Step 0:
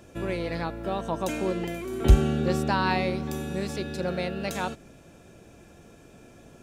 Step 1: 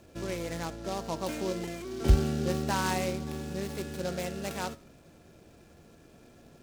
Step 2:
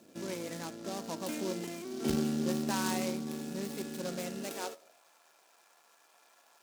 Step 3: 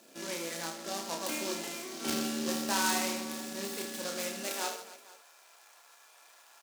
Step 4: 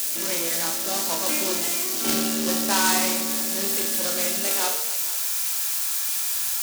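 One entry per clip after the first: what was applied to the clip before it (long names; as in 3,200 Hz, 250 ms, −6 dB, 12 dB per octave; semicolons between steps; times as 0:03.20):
Butterworth low-pass 6,700 Hz 36 dB per octave; tuned comb filter 79 Hz, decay 0.48 s, harmonics all, mix 50%; short delay modulated by noise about 4,400 Hz, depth 0.054 ms
gain on one half-wave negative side −7 dB; high-shelf EQ 3,600 Hz +8 dB; high-pass filter sweep 220 Hz → 950 Hz, 0:04.38–0:05.04; level −3.5 dB
high-pass filter 890 Hz 6 dB per octave; on a send: reverse bouncing-ball delay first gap 30 ms, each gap 1.6×, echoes 5; on the sum: level +5 dB
spike at every zero crossing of −27 dBFS; level +7.5 dB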